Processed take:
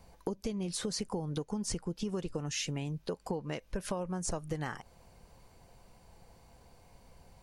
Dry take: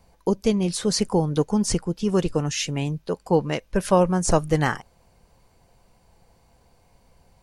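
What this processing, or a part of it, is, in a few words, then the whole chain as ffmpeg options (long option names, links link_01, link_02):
serial compression, peaks first: -af "acompressor=threshold=-27dB:ratio=6,acompressor=threshold=-36dB:ratio=2"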